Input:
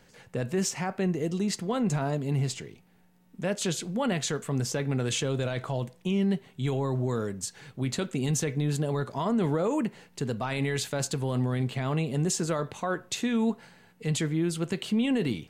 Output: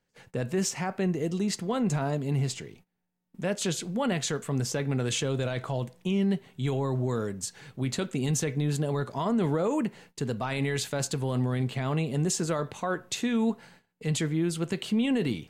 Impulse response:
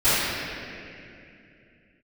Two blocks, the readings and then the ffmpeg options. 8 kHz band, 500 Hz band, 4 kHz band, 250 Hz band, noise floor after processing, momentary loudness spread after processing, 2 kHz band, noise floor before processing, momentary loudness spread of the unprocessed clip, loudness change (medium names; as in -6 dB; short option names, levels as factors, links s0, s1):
0.0 dB, 0.0 dB, 0.0 dB, 0.0 dB, -77 dBFS, 6 LU, 0.0 dB, -60 dBFS, 6 LU, 0.0 dB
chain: -af "agate=range=0.1:threshold=0.00224:ratio=16:detection=peak"